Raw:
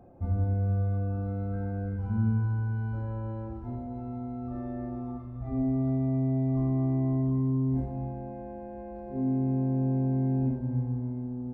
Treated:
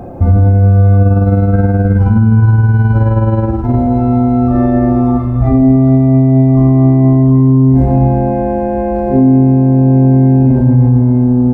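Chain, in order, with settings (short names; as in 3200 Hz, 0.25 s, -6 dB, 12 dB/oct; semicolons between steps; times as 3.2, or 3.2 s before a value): 1.02–3.74 tremolo 19 Hz, depth 48%; maximiser +27 dB; gain -1 dB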